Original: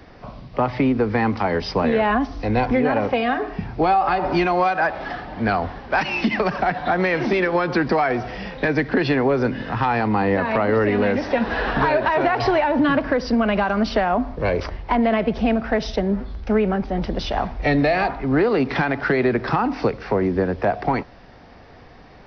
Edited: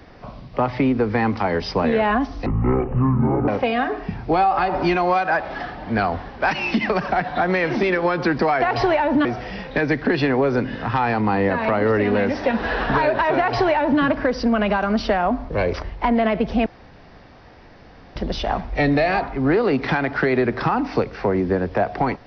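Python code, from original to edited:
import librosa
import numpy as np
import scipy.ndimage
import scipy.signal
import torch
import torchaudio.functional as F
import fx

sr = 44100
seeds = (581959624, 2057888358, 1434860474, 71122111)

y = fx.edit(x, sr, fx.speed_span(start_s=2.46, length_s=0.52, speed=0.51),
    fx.duplicate(start_s=12.26, length_s=0.63, to_s=8.12),
    fx.room_tone_fill(start_s=15.53, length_s=1.5), tone=tone)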